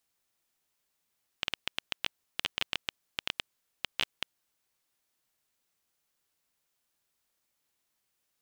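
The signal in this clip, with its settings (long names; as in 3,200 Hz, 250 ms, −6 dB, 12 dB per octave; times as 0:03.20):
Geiger counter clicks 8.4 per second −11 dBFS 3.25 s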